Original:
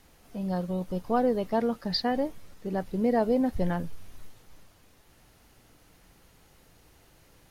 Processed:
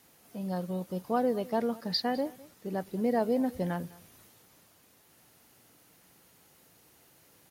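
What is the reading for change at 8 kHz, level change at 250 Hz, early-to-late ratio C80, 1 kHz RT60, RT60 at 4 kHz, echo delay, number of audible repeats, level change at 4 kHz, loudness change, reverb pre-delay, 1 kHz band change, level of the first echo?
no reading, -3.5 dB, no reverb, no reverb, no reverb, 206 ms, 1, -1.0 dB, -3.0 dB, no reverb, -3.0 dB, -21.5 dB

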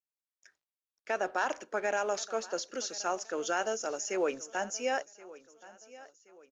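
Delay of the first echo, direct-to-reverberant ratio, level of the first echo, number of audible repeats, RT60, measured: 1075 ms, no reverb, -19.5 dB, 2, no reverb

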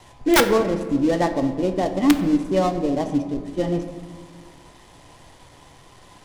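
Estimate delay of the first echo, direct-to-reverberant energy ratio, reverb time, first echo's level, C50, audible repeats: no echo, 7.0 dB, 1.6 s, no echo, 9.5 dB, no echo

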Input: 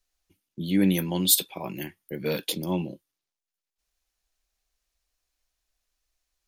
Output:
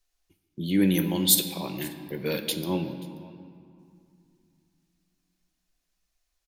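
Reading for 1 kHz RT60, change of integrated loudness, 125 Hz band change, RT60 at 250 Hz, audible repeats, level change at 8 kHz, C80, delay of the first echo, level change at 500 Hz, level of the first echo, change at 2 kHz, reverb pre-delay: 2.5 s, -0.5 dB, 0.0 dB, 3.2 s, 1, 0.0 dB, 10.0 dB, 532 ms, 0.0 dB, -23.0 dB, +0.5 dB, 3 ms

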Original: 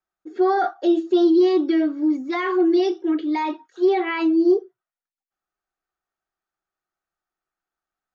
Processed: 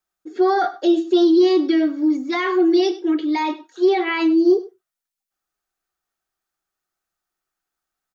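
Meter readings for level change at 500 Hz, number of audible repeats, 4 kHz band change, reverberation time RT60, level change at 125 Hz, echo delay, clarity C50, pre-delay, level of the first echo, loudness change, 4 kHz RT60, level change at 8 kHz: +2.0 dB, 1, +6.5 dB, no reverb, no reading, 100 ms, no reverb, no reverb, -17.5 dB, +2.0 dB, no reverb, no reading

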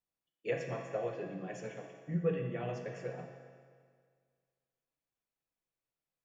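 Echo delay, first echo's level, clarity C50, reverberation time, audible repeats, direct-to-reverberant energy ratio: no echo, no echo, 4.0 dB, 1.9 s, no echo, 2.0 dB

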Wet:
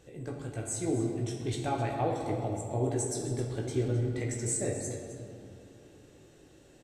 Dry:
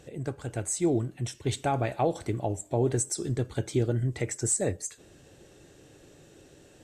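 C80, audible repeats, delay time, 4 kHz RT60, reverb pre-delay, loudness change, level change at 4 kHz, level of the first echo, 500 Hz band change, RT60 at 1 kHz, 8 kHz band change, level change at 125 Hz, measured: 4.0 dB, 1, 262 ms, 1.5 s, 16 ms, -3.0 dB, -4.0 dB, -13.0 dB, -3.0 dB, 2.5 s, -4.5 dB, -2.5 dB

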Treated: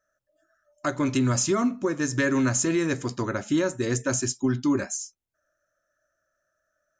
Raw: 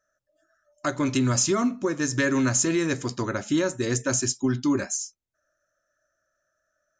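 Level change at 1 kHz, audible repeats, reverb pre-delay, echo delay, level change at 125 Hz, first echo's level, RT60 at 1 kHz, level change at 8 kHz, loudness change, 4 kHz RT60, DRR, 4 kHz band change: -0.5 dB, no echo, no reverb, no echo, 0.0 dB, no echo, no reverb, -2.5 dB, -0.5 dB, no reverb, no reverb, -3.0 dB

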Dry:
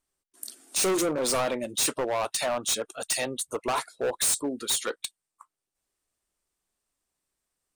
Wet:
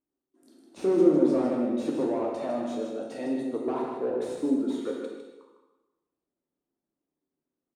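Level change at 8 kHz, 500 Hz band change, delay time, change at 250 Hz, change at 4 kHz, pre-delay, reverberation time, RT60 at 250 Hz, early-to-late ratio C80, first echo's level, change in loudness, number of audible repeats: -26.5 dB, +2.5 dB, 154 ms, +9.0 dB, -19.5 dB, 10 ms, 1.1 s, 1.2 s, 2.0 dB, -6.5 dB, -0.5 dB, 1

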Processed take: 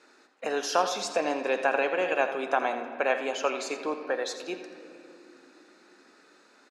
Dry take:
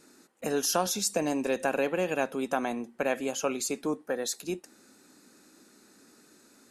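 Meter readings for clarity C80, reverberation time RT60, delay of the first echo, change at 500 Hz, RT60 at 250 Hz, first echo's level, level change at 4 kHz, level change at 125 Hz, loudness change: 8.5 dB, 3.0 s, 84 ms, +2.0 dB, 5.3 s, -11.5 dB, 0.0 dB, under -10 dB, +1.5 dB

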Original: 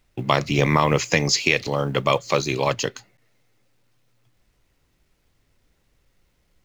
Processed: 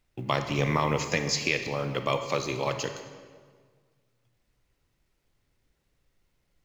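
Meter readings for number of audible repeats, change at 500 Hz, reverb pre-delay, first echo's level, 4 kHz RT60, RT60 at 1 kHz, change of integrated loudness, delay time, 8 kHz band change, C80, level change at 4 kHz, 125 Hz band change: no echo, -7.0 dB, 28 ms, no echo, 1.3 s, 1.6 s, -7.0 dB, no echo, -7.5 dB, 9.5 dB, -7.5 dB, -7.0 dB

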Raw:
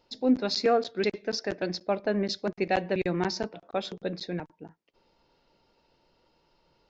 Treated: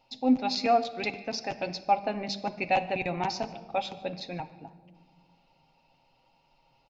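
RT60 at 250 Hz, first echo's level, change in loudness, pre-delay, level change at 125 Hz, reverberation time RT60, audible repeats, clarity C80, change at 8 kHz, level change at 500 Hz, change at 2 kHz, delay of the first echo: 2.3 s, -23.5 dB, -0.5 dB, 7 ms, -4.0 dB, 1.6 s, 1, 15.5 dB, no reading, -3.5 dB, +0.5 dB, 149 ms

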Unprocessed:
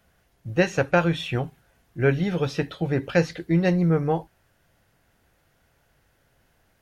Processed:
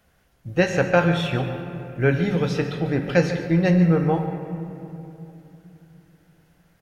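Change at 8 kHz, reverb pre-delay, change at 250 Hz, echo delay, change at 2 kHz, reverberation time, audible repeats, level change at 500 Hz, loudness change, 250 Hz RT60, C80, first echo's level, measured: no reading, 4 ms, +3.0 dB, 144 ms, +2.5 dB, 3.0 s, 1, +2.0 dB, +2.0 dB, 3.8 s, 7.0 dB, -14.0 dB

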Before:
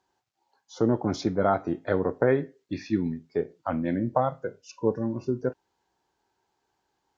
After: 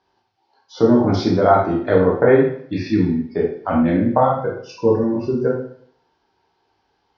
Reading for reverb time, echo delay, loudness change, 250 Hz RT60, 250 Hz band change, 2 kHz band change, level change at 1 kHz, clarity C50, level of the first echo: 0.60 s, no echo, +10.0 dB, 0.65 s, +10.0 dB, +9.0 dB, +10.5 dB, 4.5 dB, no echo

